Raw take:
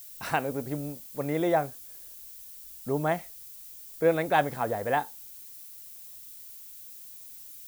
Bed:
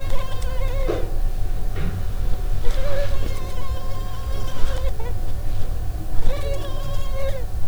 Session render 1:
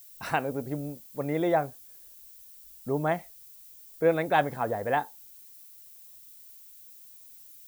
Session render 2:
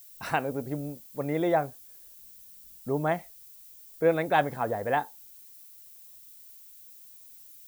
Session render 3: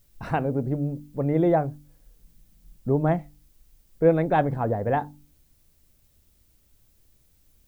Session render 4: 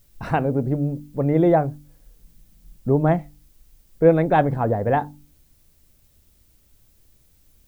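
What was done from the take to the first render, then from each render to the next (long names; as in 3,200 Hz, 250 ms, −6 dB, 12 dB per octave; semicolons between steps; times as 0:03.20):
broadband denoise 6 dB, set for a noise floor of −46 dBFS
0:02.19–0:02.79: parametric band 170 Hz +14 dB
spectral tilt −4 dB per octave; hum removal 49.28 Hz, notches 6
level +4 dB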